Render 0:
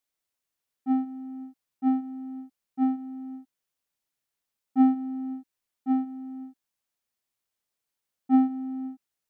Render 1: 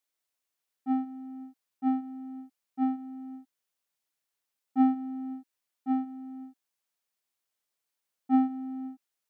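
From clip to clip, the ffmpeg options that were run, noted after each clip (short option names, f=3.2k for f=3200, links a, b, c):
-af "lowshelf=f=210:g=-9"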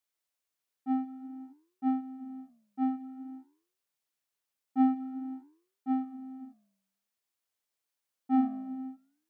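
-af "flanger=delay=8.5:depth=9.6:regen=-86:speed=0.51:shape=sinusoidal,volume=2.5dB"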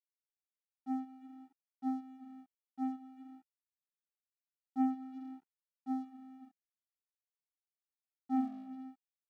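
-af "aeval=exprs='sgn(val(0))*max(abs(val(0))-0.00237,0)':c=same,volume=-6.5dB"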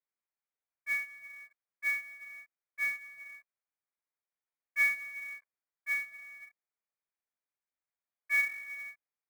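-af "lowpass=f=2.1k:t=q:w=0.5098,lowpass=f=2.1k:t=q:w=0.6013,lowpass=f=2.1k:t=q:w=0.9,lowpass=f=2.1k:t=q:w=2.563,afreqshift=-2500,acrusher=bits=4:mode=log:mix=0:aa=0.000001,volume=3.5dB"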